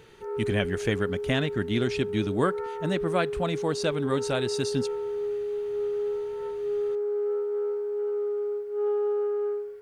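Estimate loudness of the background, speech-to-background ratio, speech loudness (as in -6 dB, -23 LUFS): -30.5 LUFS, 1.5 dB, -29.0 LUFS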